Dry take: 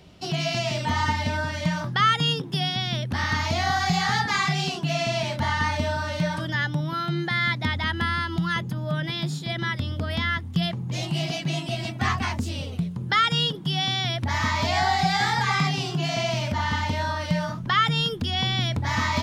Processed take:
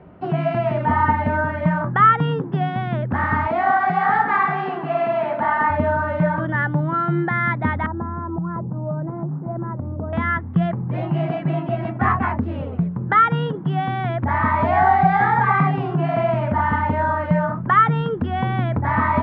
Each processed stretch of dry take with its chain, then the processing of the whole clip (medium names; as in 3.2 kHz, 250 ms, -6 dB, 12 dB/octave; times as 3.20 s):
3.47–5.70 s: high-pass 280 Hz + two-band feedback delay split 910 Hz, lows 176 ms, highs 132 ms, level -12 dB
7.86–10.13 s: sorted samples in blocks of 8 samples + Chebyshev low-pass 960 Hz, order 3 + compression 2.5:1, threshold -29 dBFS
whole clip: low-pass 1.6 kHz 24 dB/octave; bass shelf 98 Hz -10 dB; trim +8.5 dB